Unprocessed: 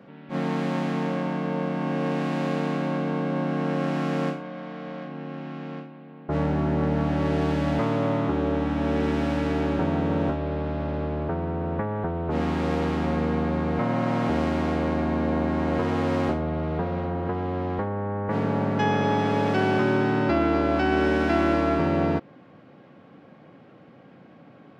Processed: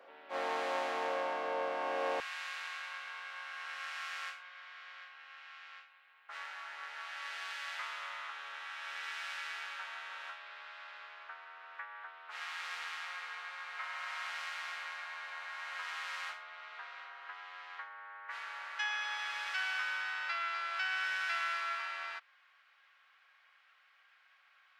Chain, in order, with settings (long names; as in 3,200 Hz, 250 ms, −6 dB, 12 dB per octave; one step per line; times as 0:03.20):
high-pass filter 510 Hz 24 dB per octave, from 0:02.20 1,400 Hz
level −2.5 dB